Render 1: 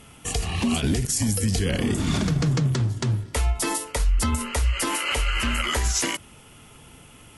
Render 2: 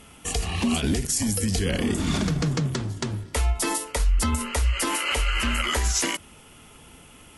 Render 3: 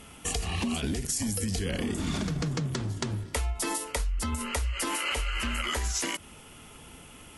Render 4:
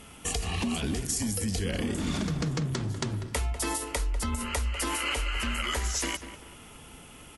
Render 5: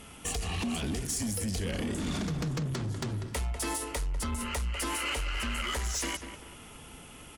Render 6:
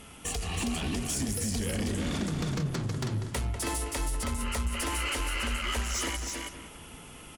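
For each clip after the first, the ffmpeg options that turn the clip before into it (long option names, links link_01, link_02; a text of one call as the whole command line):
ffmpeg -i in.wav -af "equalizer=frequency=120:width_type=o:width=0.26:gain=-13.5" out.wav
ffmpeg -i in.wav -af "acompressor=threshold=-27dB:ratio=6" out.wav
ffmpeg -i in.wav -filter_complex "[0:a]asplit=2[link_01][link_02];[link_02]adelay=195,lowpass=frequency=2500:poles=1,volume=-11dB,asplit=2[link_03][link_04];[link_04]adelay=195,lowpass=frequency=2500:poles=1,volume=0.41,asplit=2[link_05][link_06];[link_06]adelay=195,lowpass=frequency=2500:poles=1,volume=0.41,asplit=2[link_07][link_08];[link_08]adelay=195,lowpass=frequency=2500:poles=1,volume=0.41[link_09];[link_01][link_03][link_05][link_07][link_09]amix=inputs=5:normalize=0" out.wav
ffmpeg -i in.wav -af "asoftclip=type=tanh:threshold=-26.5dB" out.wav
ffmpeg -i in.wav -af "aecho=1:1:321:0.631" out.wav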